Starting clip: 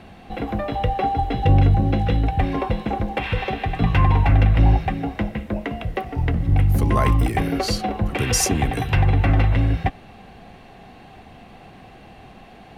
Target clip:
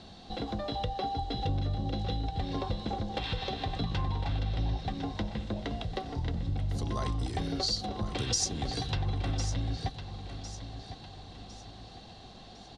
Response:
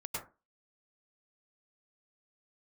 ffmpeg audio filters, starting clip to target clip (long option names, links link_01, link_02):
-filter_complex "[0:a]lowpass=frequency=7600:width=0.5412,lowpass=frequency=7600:width=1.3066,highshelf=frequency=3100:width_type=q:width=3:gain=8.5,acompressor=threshold=-24dB:ratio=3,asplit=2[link_01][link_02];[link_02]aecho=0:1:1055|2110|3165|4220:0.282|0.113|0.0451|0.018[link_03];[link_01][link_03]amix=inputs=2:normalize=0,volume=-7dB"